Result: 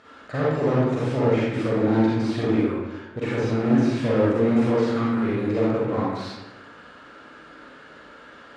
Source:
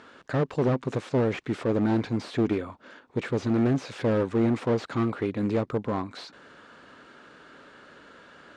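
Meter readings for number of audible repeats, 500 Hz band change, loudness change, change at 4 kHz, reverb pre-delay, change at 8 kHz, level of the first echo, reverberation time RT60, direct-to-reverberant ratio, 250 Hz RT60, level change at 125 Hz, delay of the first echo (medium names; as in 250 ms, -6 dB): no echo, +5.0 dB, +4.5 dB, +3.5 dB, 38 ms, no reading, no echo, 1.1 s, -7.5 dB, 1.3 s, +3.5 dB, no echo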